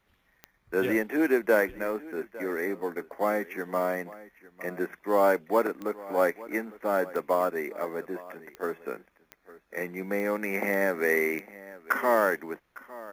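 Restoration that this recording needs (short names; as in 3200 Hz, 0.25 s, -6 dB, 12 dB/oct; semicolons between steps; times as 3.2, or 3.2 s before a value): de-click; inverse comb 0.856 s -19 dB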